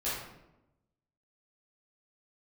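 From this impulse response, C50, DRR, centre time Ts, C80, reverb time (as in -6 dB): 0.0 dB, -11.5 dB, 65 ms, 4.0 dB, 0.95 s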